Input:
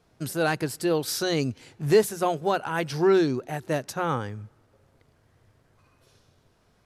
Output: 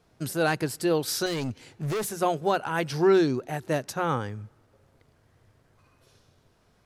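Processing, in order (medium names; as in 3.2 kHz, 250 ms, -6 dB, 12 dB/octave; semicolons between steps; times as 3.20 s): 1.26–2.20 s: overload inside the chain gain 26.5 dB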